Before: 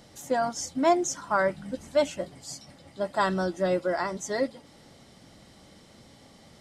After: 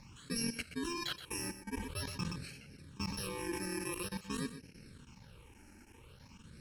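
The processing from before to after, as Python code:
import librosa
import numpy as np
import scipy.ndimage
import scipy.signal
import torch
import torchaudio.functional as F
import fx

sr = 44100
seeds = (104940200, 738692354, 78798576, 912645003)

y = fx.bit_reversed(x, sr, seeds[0], block=64)
y = scipy.signal.sosfilt(scipy.signal.butter(2, 6000.0, 'lowpass', fs=sr, output='sos'), y)
y = fx.low_shelf(y, sr, hz=100.0, db=5.0)
y = fx.level_steps(y, sr, step_db=19)
y = fx.phaser_stages(y, sr, stages=8, low_hz=140.0, high_hz=1100.0, hz=0.48, feedback_pct=5)
y = y + 10.0 ** (-12.0 / 20.0) * np.pad(y, (int(124 * sr / 1000.0), 0))[:len(y)]
y = fx.sustainer(y, sr, db_per_s=49.0, at=(1.7, 4.02))
y = y * 10.0 ** (3.5 / 20.0)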